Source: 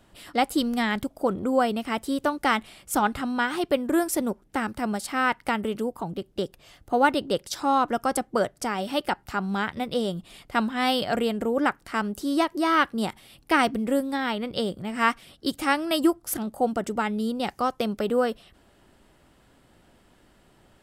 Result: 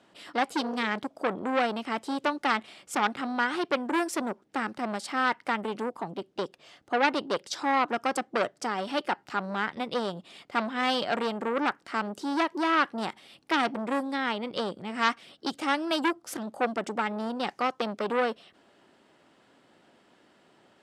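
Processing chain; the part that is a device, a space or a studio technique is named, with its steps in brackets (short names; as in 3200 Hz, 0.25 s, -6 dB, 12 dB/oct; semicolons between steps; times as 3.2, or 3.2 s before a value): public-address speaker with an overloaded transformer (core saturation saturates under 2600 Hz; BPF 230–6300 Hz)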